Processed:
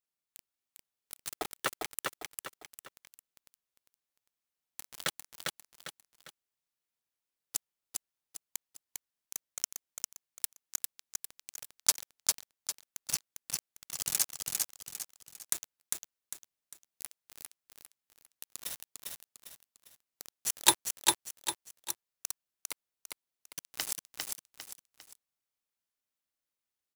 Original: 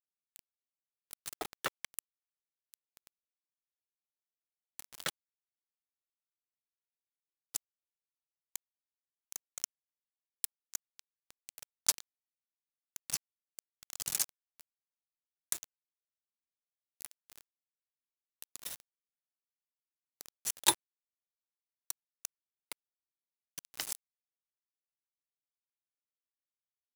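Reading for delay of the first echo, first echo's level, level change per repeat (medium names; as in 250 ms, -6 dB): 401 ms, -3.0 dB, -8.5 dB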